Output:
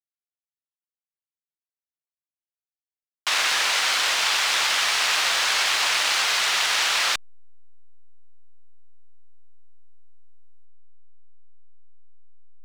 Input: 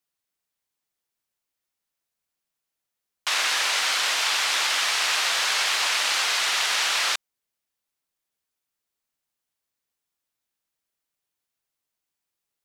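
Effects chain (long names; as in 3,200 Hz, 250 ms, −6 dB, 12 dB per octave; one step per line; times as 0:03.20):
slack as between gear wheels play −33.5 dBFS
level +2 dB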